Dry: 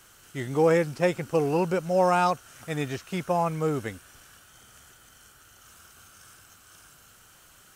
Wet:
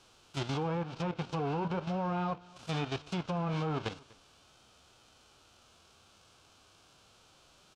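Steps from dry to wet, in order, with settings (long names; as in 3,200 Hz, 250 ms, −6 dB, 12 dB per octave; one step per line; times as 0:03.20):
spectral envelope flattened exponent 0.3
low-pass filter 4,400 Hz 12 dB per octave
parametric band 1,900 Hz −14 dB 0.44 octaves
downward compressor 2.5 to 1, threshold −28 dBFS, peak gain reduction 7.5 dB
treble cut that deepens with the level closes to 1,600 Hz, closed at −26.5 dBFS
flanger 1 Hz, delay 9.4 ms, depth 5.2 ms, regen −64%
output level in coarse steps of 10 dB
on a send: single-tap delay 245 ms −23.5 dB
on the sum: level +7.5 dB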